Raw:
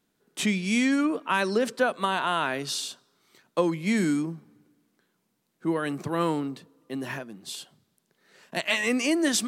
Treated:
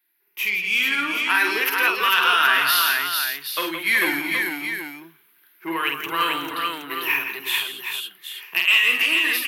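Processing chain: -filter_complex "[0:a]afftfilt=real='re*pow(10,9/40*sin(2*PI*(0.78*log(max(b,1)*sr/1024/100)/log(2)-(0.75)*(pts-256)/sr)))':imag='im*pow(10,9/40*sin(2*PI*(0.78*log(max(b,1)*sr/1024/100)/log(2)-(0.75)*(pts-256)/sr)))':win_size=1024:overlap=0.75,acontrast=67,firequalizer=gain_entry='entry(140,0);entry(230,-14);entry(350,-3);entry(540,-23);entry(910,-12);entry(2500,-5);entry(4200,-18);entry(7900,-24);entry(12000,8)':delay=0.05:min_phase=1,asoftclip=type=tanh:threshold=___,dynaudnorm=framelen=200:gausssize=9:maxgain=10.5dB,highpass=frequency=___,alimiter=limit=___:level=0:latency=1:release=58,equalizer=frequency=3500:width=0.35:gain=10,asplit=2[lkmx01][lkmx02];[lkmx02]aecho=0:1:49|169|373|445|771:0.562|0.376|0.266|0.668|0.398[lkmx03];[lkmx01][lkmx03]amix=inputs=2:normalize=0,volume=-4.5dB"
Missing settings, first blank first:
-17dB, 650, -12dB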